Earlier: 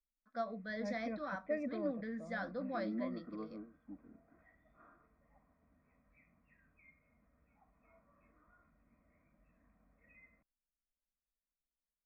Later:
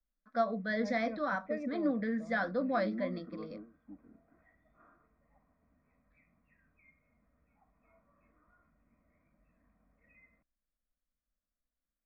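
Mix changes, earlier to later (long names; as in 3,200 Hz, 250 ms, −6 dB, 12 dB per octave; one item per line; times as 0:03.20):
speech +9.0 dB
master: add high-frequency loss of the air 64 metres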